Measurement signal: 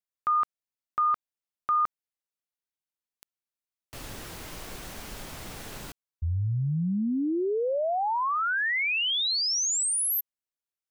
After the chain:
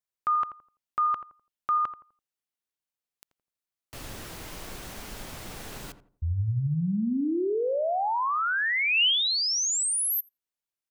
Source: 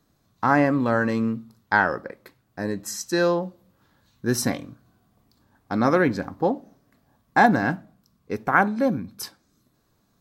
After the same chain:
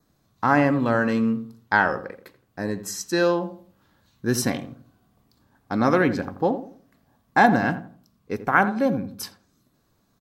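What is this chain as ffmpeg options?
-filter_complex "[0:a]adynamicequalizer=threshold=0.00447:dfrequency=2900:dqfactor=3.7:tfrequency=2900:tqfactor=3.7:attack=5:release=100:ratio=0.375:range=3:mode=boostabove:tftype=bell,asplit=2[s0][s1];[s1]adelay=84,lowpass=f=1100:p=1,volume=0.299,asplit=2[s2][s3];[s3]adelay=84,lowpass=f=1100:p=1,volume=0.34,asplit=2[s4][s5];[s5]adelay=84,lowpass=f=1100:p=1,volume=0.34,asplit=2[s6][s7];[s7]adelay=84,lowpass=f=1100:p=1,volume=0.34[s8];[s2][s4][s6][s8]amix=inputs=4:normalize=0[s9];[s0][s9]amix=inputs=2:normalize=0"

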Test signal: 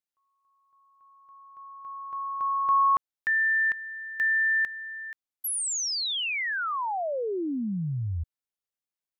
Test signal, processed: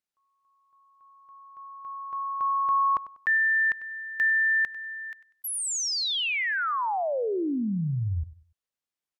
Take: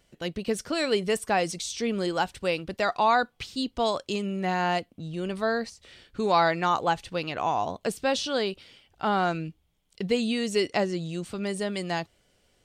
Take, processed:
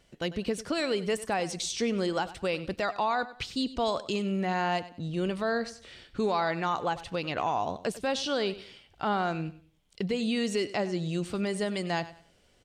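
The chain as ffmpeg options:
-af "highshelf=f=11000:g=-8.5,alimiter=limit=0.0891:level=0:latency=1:release=256,aecho=1:1:97|194|291:0.158|0.046|0.0133,volume=1.26"

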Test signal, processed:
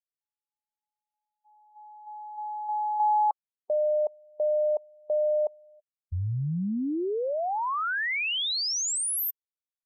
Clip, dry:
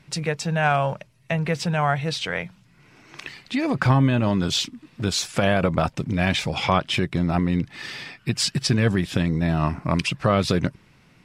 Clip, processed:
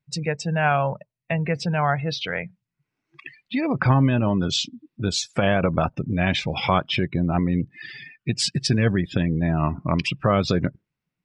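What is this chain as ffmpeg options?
-af "afftdn=nr=30:nf=-33"

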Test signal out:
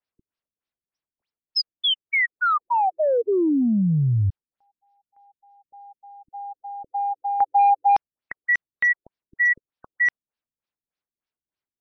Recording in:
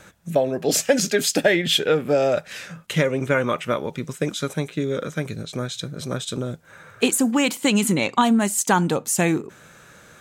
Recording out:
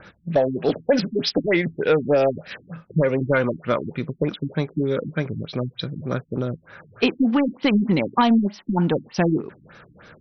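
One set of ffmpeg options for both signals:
-af "asoftclip=type=tanh:threshold=0.266,afftfilt=real='re*lt(b*sr/1024,320*pow(6100/320,0.5+0.5*sin(2*PI*3.3*pts/sr)))':imag='im*lt(b*sr/1024,320*pow(6100/320,0.5+0.5*sin(2*PI*3.3*pts/sr)))':win_size=1024:overlap=0.75,volume=1.33"

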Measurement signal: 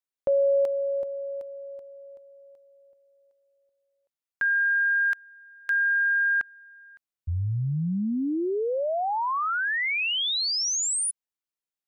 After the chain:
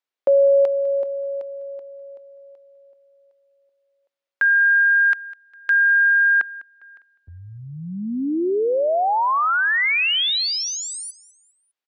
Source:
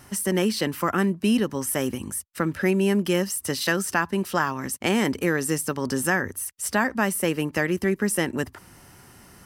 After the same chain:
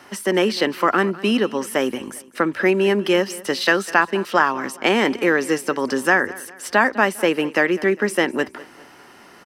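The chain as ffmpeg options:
-filter_complex "[0:a]acrossover=split=250 4900:gain=0.0794 1 0.178[s0][s1][s2];[s0][s1][s2]amix=inputs=3:normalize=0,asplit=2[s3][s4];[s4]aecho=0:1:202|404|606:0.106|0.0434|0.0178[s5];[s3][s5]amix=inputs=2:normalize=0,volume=2.37"

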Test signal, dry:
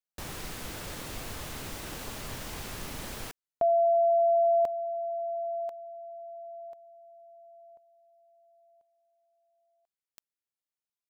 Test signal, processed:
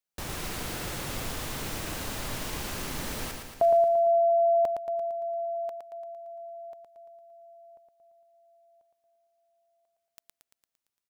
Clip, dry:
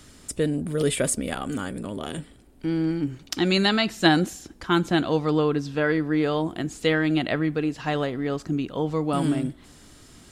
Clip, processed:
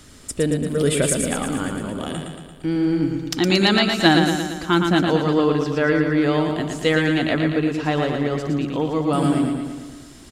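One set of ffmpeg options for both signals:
-af "aecho=1:1:114|228|342|456|570|684|798|912:0.562|0.332|0.196|0.115|0.0681|0.0402|0.0237|0.014,volume=1.41"

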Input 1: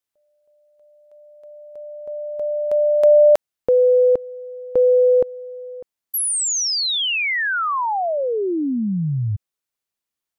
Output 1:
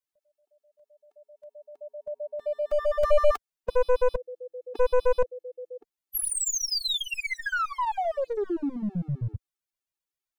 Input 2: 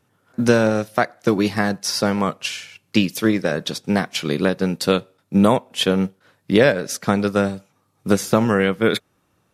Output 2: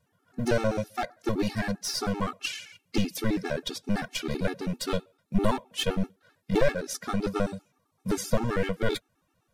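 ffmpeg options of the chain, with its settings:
-af "aeval=exprs='clip(val(0),-1,0.0944)':c=same,asubboost=boost=2:cutoff=53,afftfilt=real='re*gt(sin(2*PI*7.7*pts/sr)*(1-2*mod(floor(b*sr/1024/230),2)),0)':imag='im*gt(sin(2*PI*7.7*pts/sr)*(1-2*mod(floor(b*sr/1024/230),2)),0)':win_size=1024:overlap=0.75,volume=0.668"

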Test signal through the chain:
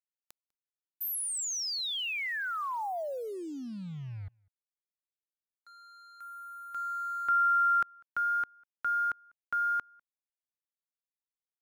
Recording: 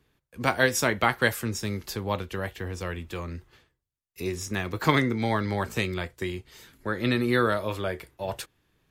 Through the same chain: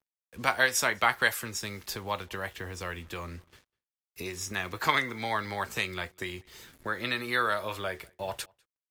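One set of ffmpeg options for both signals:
-filter_complex "[0:a]acrossover=split=650|4800[s0][s1][s2];[s0]acompressor=threshold=0.0112:ratio=5[s3];[s3][s1][s2]amix=inputs=3:normalize=0,acrusher=bits=8:mix=0:aa=0.5,asplit=2[s4][s5];[s5]adelay=198.3,volume=0.0355,highshelf=f=4000:g=-4.46[s6];[s4][s6]amix=inputs=2:normalize=0"

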